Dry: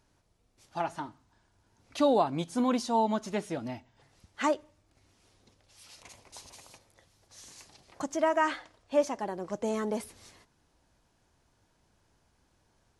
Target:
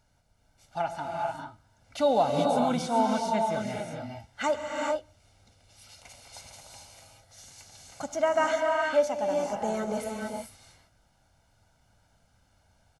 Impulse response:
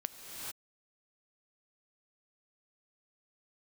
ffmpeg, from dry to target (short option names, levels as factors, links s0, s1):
-filter_complex "[0:a]aecho=1:1:1.4:0.62[s0];[1:a]atrim=start_sample=2205[s1];[s0][s1]afir=irnorm=-1:irlink=0,volume=1.12"